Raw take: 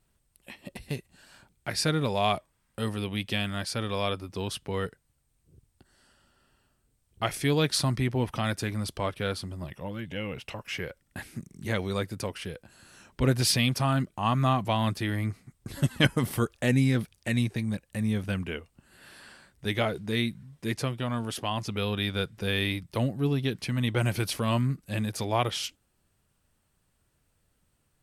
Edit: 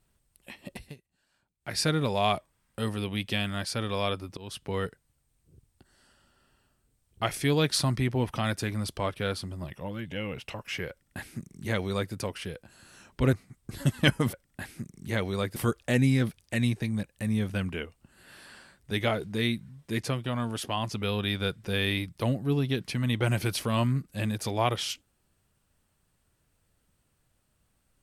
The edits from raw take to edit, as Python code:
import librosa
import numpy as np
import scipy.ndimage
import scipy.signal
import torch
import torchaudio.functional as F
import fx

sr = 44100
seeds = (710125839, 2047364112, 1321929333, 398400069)

y = fx.edit(x, sr, fx.fade_down_up(start_s=0.78, length_s=0.98, db=-18.5, fade_s=0.17),
    fx.fade_in_from(start_s=4.37, length_s=0.3, floor_db=-20.0),
    fx.duplicate(start_s=10.9, length_s=1.23, to_s=16.3),
    fx.cut(start_s=13.33, length_s=1.97), tone=tone)